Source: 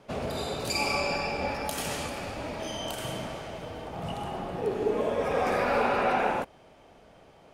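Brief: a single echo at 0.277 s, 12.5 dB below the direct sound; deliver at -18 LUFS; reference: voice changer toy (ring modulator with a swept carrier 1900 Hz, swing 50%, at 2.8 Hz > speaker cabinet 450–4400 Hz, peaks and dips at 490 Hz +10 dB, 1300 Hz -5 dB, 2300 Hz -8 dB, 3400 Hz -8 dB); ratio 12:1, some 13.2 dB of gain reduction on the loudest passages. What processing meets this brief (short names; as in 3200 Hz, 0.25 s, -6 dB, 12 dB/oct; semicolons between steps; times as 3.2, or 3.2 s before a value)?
compressor 12:1, threshold -35 dBFS; echo 0.277 s -12.5 dB; ring modulator with a swept carrier 1900 Hz, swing 50%, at 2.8 Hz; speaker cabinet 450–4400 Hz, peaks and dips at 490 Hz +10 dB, 1300 Hz -5 dB, 2300 Hz -8 dB, 3400 Hz -8 dB; gain +26 dB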